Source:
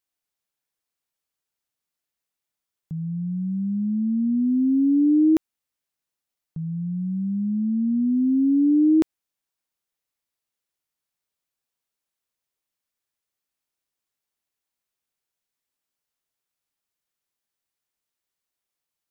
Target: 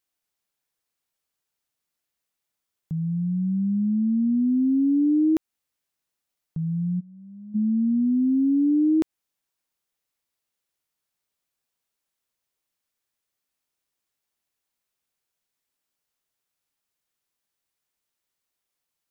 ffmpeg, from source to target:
-filter_complex "[0:a]asplit=3[s0][s1][s2];[s0]afade=t=out:st=6.99:d=0.02[s3];[s1]agate=range=0.0224:threshold=0.224:ratio=3:detection=peak,afade=t=in:st=6.99:d=0.02,afade=t=out:st=7.54:d=0.02[s4];[s2]afade=t=in:st=7.54:d=0.02[s5];[s3][s4][s5]amix=inputs=3:normalize=0,acompressor=threshold=0.0708:ratio=2.5,volume=1.33"

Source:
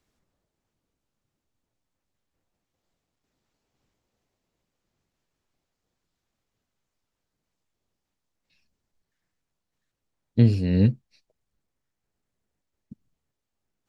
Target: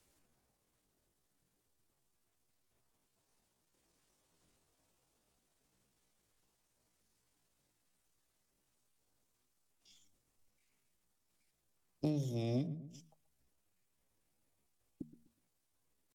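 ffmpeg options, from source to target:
-filter_complex "[0:a]bandreject=f=60:t=h:w=6,bandreject=f=120:t=h:w=6,bandreject=f=180:t=h:w=6,acrossover=split=620[s0][s1];[s1]asoftclip=type=tanh:threshold=0.0237[s2];[s0][s2]amix=inputs=2:normalize=0,highshelf=f=4400:g=10,asplit=2[s3][s4];[s4]adelay=105,lowpass=f=840:p=1,volume=0.158,asplit=2[s5][s6];[s6]adelay=105,lowpass=f=840:p=1,volume=0.27,asplit=2[s7][s8];[s8]adelay=105,lowpass=f=840:p=1,volume=0.27[s9];[s5][s7][s9]amix=inputs=3:normalize=0[s10];[s3][s10]amix=inputs=2:normalize=0,acrossover=split=230[s11][s12];[s11]acompressor=threshold=0.0891:ratio=2[s13];[s13][s12]amix=inputs=2:normalize=0,asetrate=66075,aresample=44100,atempo=0.66742,acompressor=threshold=0.0126:ratio=3,asetrate=37926,aresample=44100"

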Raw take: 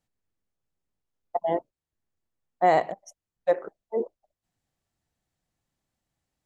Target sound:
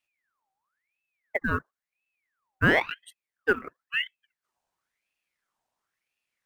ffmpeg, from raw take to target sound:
-af "acrusher=bits=9:mode=log:mix=0:aa=0.000001,aeval=exprs='val(0)*sin(2*PI*1700*n/s+1700*0.55/0.97*sin(2*PI*0.97*n/s))':c=same,volume=1.19"

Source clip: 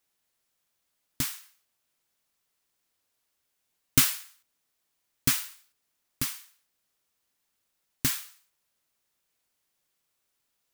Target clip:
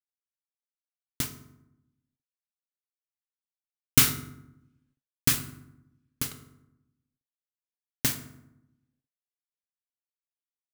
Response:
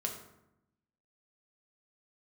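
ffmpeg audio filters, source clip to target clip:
-filter_complex "[0:a]aeval=exprs='sgn(val(0))*max(abs(val(0))-0.0299,0)':c=same,asettb=1/sr,asplit=3[s0][s1][s2];[s0]atrim=end=6.314[s3];[s1]atrim=start=6.31:end=8.05,asetpts=PTS-STARTPTS,afade=t=in:d=0.004:c=qsin,afade=t=out:st=1.736:d=0.004:c=qsin,asplit=2[s4][s5];[s5]highpass=f=720:p=1,volume=50.1,asoftclip=type=tanh:threshold=0.251[s6];[s4][s6]amix=inputs=2:normalize=0,lowpass=f=3000:p=1,volume=0.501[s7];[s2]atrim=start=8.046[s8];[s3][s7]acrossfade=d=0.004:c1=hsin:c2=qsin[s9];[s9][s8]acrossfade=d=0.004:c1=qsin:c2=hsin,asplit=2[s10][s11];[1:a]atrim=start_sample=2205[s12];[s11][s12]afir=irnorm=-1:irlink=0,volume=1.06[s13];[s10][s13]amix=inputs=2:normalize=0,volume=0.75"

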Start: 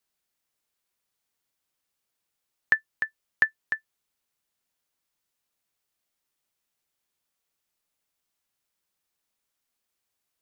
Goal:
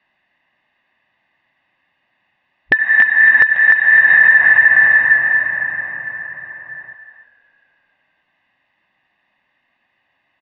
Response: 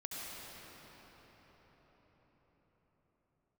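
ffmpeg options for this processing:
-filter_complex "[0:a]afwtdn=0.0112,aecho=1:1:1.1:0.87,asplit=2[s0][s1];[s1]highpass=62[s2];[1:a]atrim=start_sample=2205[s3];[s2][s3]afir=irnorm=-1:irlink=0,volume=0.422[s4];[s0][s4]amix=inputs=2:normalize=0,acompressor=threshold=0.00794:ratio=6,asplit=6[s5][s6][s7][s8][s9][s10];[s6]adelay=280,afreqshift=-37,volume=0.0944[s11];[s7]adelay=560,afreqshift=-74,volume=0.0556[s12];[s8]adelay=840,afreqshift=-111,volume=0.0327[s13];[s9]adelay=1120,afreqshift=-148,volume=0.0195[s14];[s10]adelay=1400,afreqshift=-185,volume=0.0115[s15];[s5][s11][s12][s13][s14][s15]amix=inputs=6:normalize=0,acontrast=77,equalizer=f=125:t=o:w=1:g=5,equalizer=f=250:t=o:w=1:g=6,equalizer=f=500:t=o:w=1:g=12,equalizer=f=2000:t=o:w=1:g=11,asoftclip=type=tanh:threshold=0.178,lowpass=f=3000:w=0.5412,lowpass=f=3000:w=1.3066,lowshelf=f=330:g=-7,alimiter=level_in=14.1:limit=0.891:release=50:level=0:latency=1,volume=0.891"

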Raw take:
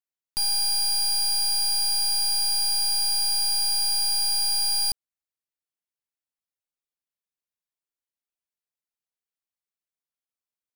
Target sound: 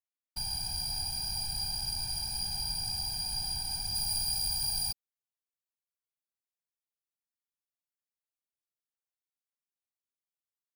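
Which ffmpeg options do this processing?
-af "asetnsamples=n=441:p=0,asendcmd='3.95 highshelf g 3.5',highshelf=f=7600:g=-4,afftfilt=real='hypot(re,im)*cos(2*PI*random(0))':imag='hypot(re,im)*sin(2*PI*random(1))':win_size=512:overlap=0.75,volume=0.668"

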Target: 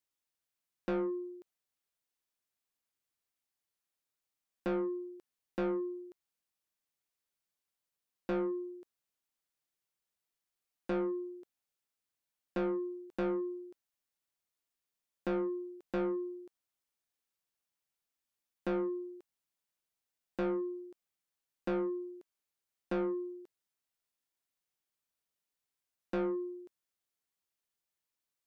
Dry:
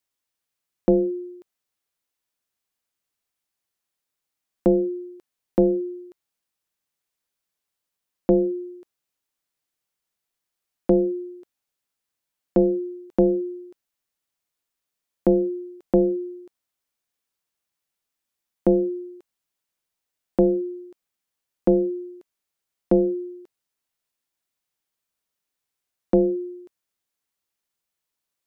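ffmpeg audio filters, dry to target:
-af "asoftclip=type=tanh:threshold=0.0631,volume=0.473"

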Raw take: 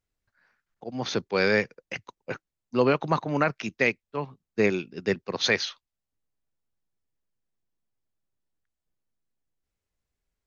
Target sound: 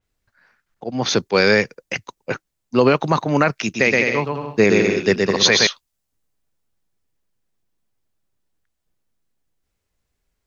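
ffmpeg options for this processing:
-filter_complex "[0:a]asettb=1/sr,asplit=3[s0][s1][s2];[s0]atrim=end=3.624[s3];[s1]atrim=start=3.62:end=5.67,asetpts=PTS-STARTPTS,afade=t=in:d=0.004:c=qsin,afade=t=out:st=2.046:d=0.004:c=qsin,aecho=1:1:120|204|262.8|304|332.8:0.631|0.398|0.251|0.158|0.1,atrim=end_sample=90405[s4];[s2]atrim=start=5.666[s5];[s3][s4]acrossfade=d=0.004:c1=hsin:c2=qsin[s6];[s6][s5]acrossfade=d=0.004:c1=qsin:c2=hsin,alimiter=level_in=3.98:limit=0.891:release=50:level=0:latency=1,adynamicequalizer=threshold=0.0251:dfrequency=4900:dqfactor=0.7:tfrequency=4900:tqfactor=0.7:attack=5:release=100:ratio=0.375:range=4:mode=boostabove:tftype=highshelf,volume=0.708"

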